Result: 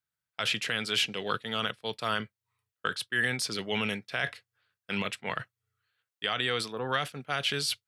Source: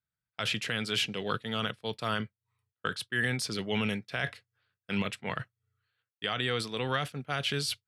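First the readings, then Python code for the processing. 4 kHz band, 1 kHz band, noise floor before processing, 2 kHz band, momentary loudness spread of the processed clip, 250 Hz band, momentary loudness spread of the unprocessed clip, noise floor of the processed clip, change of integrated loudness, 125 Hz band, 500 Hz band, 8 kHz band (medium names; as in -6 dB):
+2.5 dB, +2.0 dB, under -85 dBFS, +2.5 dB, 8 LU, -2.5 dB, 7 LU, under -85 dBFS, +1.5 dB, -4.5 dB, +0.5 dB, +2.5 dB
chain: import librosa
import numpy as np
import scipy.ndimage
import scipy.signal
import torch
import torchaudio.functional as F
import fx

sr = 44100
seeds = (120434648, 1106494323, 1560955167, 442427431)

y = fx.spec_box(x, sr, start_s=6.72, length_s=0.21, low_hz=1800.0, high_hz=11000.0, gain_db=-20)
y = fx.low_shelf(y, sr, hz=280.0, db=-8.5)
y = F.gain(torch.from_numpy(y), 2.5).numpy()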